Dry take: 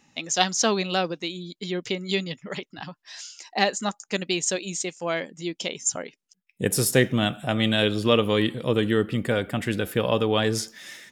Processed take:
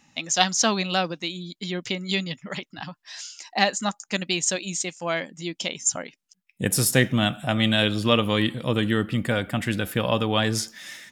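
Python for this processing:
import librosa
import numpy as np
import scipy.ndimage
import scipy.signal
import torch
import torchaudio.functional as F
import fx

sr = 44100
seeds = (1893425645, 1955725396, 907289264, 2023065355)

y = fx.peak_eq(x, sr, hz=420.0, db=-8.0, octaves=0.59)
y = y * librosa.db_to_amplitude(2.0)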